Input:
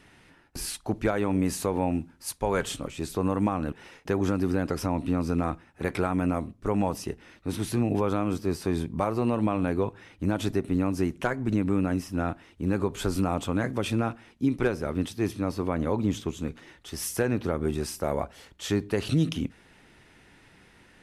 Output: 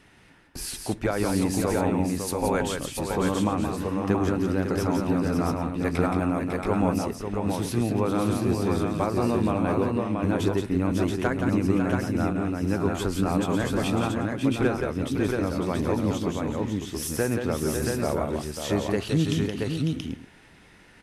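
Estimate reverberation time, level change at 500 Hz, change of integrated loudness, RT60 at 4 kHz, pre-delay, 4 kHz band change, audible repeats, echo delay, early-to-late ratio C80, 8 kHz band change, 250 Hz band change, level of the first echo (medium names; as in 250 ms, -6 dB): no reverb, +3.0 dB, +2.5 dB, no reverb, no reverb, +3.0 dB, 4, 173 ms, no reverb, +3.0 dB, +3.0 dB, -5.5 dB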